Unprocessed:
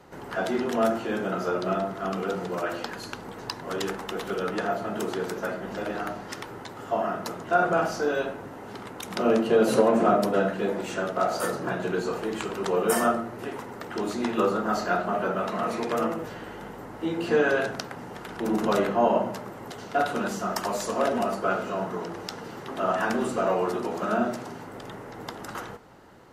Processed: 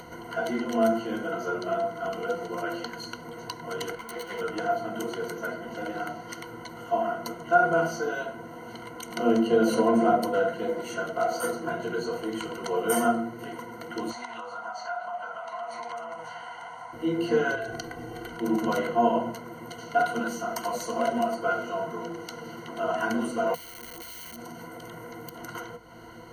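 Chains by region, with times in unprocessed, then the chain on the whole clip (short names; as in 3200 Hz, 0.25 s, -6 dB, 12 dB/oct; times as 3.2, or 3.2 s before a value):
3.95–4.41 self-modulated delay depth 0.59 ms + bell 1300 Hz +3.5 dB 2.5 oct + ensemble effect
14.1–16.93 LPF 9300 Hz 24 dB/oct + resonant low shelf 540 Hz -13.5 dB, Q 3 + compressor 5:1, threshold -31 dBFS
17.55–18.29 low shelf 190 Hz +9.5 dB + comb 2.6 ms, depth 72% + compressor 4:1, threshold -27 dBFS
23.54–25.38 wrapped overs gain 26.5 dB + high shelf 11000 Hz +12 dB + compressor, threshold -36 dBFS
whole clip: ripple EQ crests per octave 1.9, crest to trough 18 dB; upward compressor, threshold -30 dBFS; gain -6 dB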